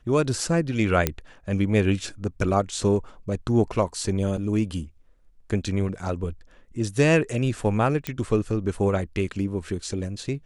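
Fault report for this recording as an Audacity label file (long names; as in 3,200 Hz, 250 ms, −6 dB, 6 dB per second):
1.070000	1.070000	click −6 dBFS
4.370000	4.370000	drop-out 2.5 ms
8.070000	8.070000	click −11 dBFS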